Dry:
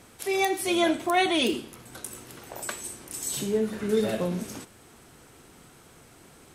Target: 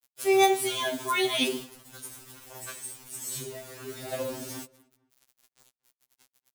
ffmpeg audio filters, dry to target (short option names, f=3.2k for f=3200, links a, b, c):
-filter_complex "[0:a]acrusher=bits=6:mix=0:aa=0.000001,highshelf=f=5.4k:g=5,asplit=2[a][b];[b]adelay=229,lowpass=f=2.1k:p=1,volume=-22dB,asplit=2[c][d];[d]adelay=229,lowpass=f=2.1k:p=1,volume=0.35[e];[a][c][e]amix=inputs=3:normalize=0,asettb=1/sr,asplit=3[f][g][h];[f]atrim=end=1.634[i];[g]atrim=start=1.63:end=4.13,asetpts=PTS-STARTPTS,afade=t=in:d=0.004:c=qsin,afade=t=out:st=2.496:d=0.004:c=qsin,flanger=delay=0.8:depth=7.5:regen=81:speed=1.5:shape=sinusoidal[j];[h]atrim=start=4.126[k];[i][j]acrossfade=d=0.004:c1=hsin:c2=qsin[l];[l][k]acrossfade=d=0.004:c1=qsin:c2=hsin,afftfilt=real='re*2.45*eq(mod(b,6),0)':imag='im*2.45*eq(mod(b,6),0)':win_size=2048:overlap=0.75"